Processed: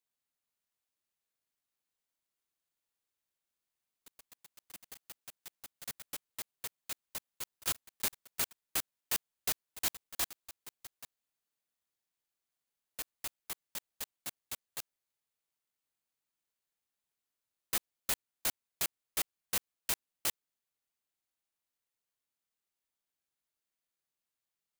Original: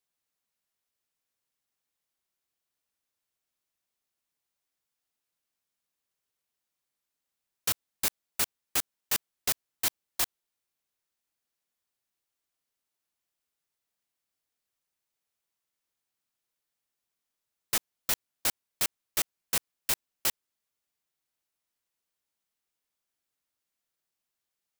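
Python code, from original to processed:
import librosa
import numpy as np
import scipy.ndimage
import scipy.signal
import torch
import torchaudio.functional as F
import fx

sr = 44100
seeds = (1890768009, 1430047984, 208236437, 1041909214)

y = fx.echo_pitch(x, sr, ms=450, semitones=6, count=3, db_per_echo=-6.0)
y = (np.kron(scipy.signal.resample_poly(y, 1, 4), np.eye(4)[0]) * 4)[:len(y)]
y = y * 10.0 ** (-5.0 / 20.0)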